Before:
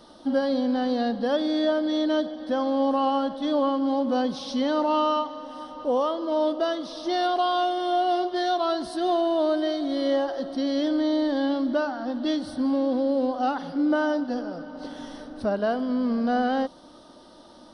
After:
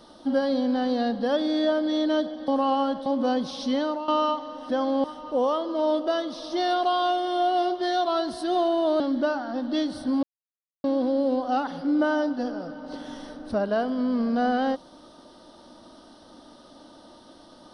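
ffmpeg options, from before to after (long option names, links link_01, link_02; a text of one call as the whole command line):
ffmpeg -i in.wav -filter_complex "[0:a]asplit=8[link_01][link_02][link_03][link_04][link_05][link_06][link_07][link_08];[link_01]atrim=end=2.482[link_09];[link_02]atrim=start=2.828:end=3.412[link_10];[link_03]atrim=start=3.938:end=4.96,asetpts=PTS-STARTPTS,afade=type=out:start_time=0.702:duration=0.32:silence=0.188365[link_11];[link_04]atrim=start=4.96:end=5.572,asetpts=PTS-STARTPTS,afade=type=in:duration=0.004:curve=hsin:silence=0.188365[link_12];[link_05]atrim=start=2.478:end=2.832[link_13];[link_06]atrim=start=5.568:end=9.532[link_14];[link_07]atrim=start=11.518:end=12.75,asetpts=PTS-STARTPTS,afade=type=out:start_time=1.228:duration=0.004:curve=hsin,apad=pad_dur=0.61[link_15];[link_08]atrim=start=12.75,asetpts=PTS-STARTPTS,afade=type=in:duration=0.004:curve=hsin[link_16];[link_09][link_10]acrossfade=duration=0.004:curve1=hsin:curve2=hsin[link_17];[link_11][link_12]concat=n=2:v=0:a=1[link_18];[link_17][link_18]acrossfade=duration=0.004:curve1=hsin:curve2=hsin[link_19];[link_19][link_13]acrossfade=duration=0.004:curve1=hsin:curve2=hsin[link_20];[link_20][link_14]acrossfade=duration=0.004:curve1=hsin:curve2=hsin[link_21];[link_15][link_16]concat=n=2:v=0:a=1[link_22];[link_21][link_22]acrossfade=duration=0.004:curve1=hsin:curve2=hsin" out.wav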